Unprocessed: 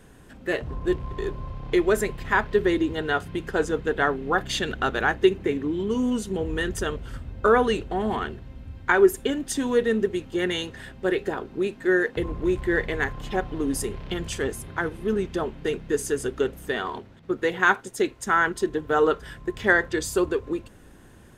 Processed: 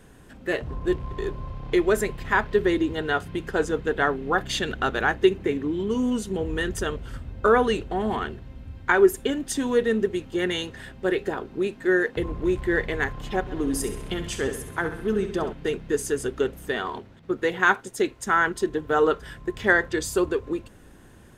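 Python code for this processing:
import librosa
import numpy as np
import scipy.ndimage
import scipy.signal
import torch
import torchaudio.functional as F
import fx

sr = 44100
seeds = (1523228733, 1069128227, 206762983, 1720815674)

y = fx.echo_feedback(x, sr, ms=66, feedback_pct=52, wet_db=-10.0, at=(13.46, 15.52), fade=0.02)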